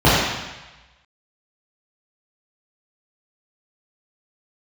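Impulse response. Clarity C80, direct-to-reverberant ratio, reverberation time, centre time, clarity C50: 0.5 dB, -11.0 dB, 1.1 s, 94 ms, -2.0 dB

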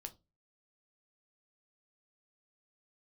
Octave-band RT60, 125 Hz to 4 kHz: 0.45, 0.35, 0.30, 0.20, 0.15, 0.20 s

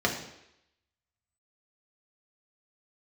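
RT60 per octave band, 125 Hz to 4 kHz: 0.65, 0.75, 0.80, 0.80, 0.85, 0.85 s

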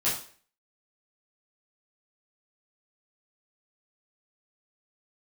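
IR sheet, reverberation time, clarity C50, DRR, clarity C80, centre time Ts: 0.45 s, 5.5 dB, -10.0 dB, 10.0 dB, 38 ms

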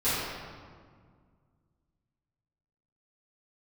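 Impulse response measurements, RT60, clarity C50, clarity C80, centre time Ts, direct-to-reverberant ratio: 1.9 s, -3.5 dB, -1.0 dB, 0.126 s, -15.5 dB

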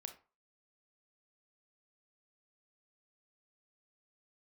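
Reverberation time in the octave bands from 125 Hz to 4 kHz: 0.30, 0.30, 0.35, 0.40, 0.30, 0.20 s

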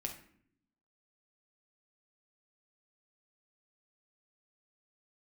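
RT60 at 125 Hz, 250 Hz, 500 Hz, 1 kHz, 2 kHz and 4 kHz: 1.0, 1.1, 0.65, 0.55, 0.55, 0.40 s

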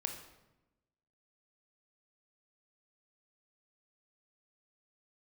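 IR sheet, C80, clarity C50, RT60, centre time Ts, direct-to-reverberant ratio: 9.5 dB, 7.0 dB, 1.0 s, 24 ms, 4.0 dB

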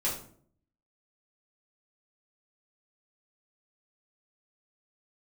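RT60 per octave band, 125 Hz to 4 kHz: 0.80, 0.75, 0.60, 0.50, 0.40, 0.35 s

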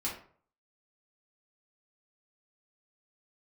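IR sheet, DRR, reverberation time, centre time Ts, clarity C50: -6.5 dB, 0.50 s, 30 ms, 6.0 dB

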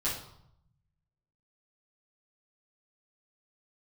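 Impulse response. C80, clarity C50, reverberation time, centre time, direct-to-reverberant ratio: 9.0 dB, 4.5 dB, 0.75 s, 39 ms, -9.5 dB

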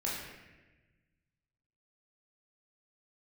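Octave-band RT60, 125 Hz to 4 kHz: 2.1, 1.7, 1.3, 1.0, 1.3, 0.90 s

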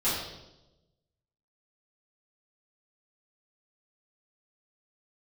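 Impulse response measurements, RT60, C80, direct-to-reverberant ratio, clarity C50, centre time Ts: 0.95 s, 4.0 dB, -12.5 dB, 1.0 dB, 65 ms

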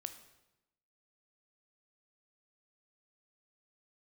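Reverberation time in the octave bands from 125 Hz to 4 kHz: 1.1, 1.1, 0.95, 0.90, 0.85, 0.80 s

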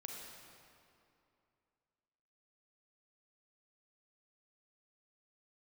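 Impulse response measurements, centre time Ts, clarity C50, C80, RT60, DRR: 0.109 s, 0.5 dB, 1.5 dB, 2.6 s, -0.5 dB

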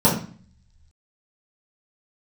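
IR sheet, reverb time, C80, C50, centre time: 0.45 s, 11.0 dB, 6.0 dB, 30 ms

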